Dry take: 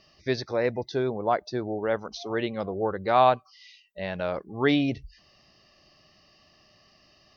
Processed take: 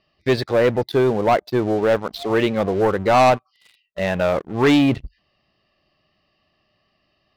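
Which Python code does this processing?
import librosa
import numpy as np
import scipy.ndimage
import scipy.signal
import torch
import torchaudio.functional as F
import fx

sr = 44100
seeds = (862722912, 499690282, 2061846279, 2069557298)

y = scipy.signal.sosfilt(scipy.signal.butter(4, 4000.0, 'lowpass', fs=sr, output='sos'), x)
y = fx.leveller(y, sr, passes=3)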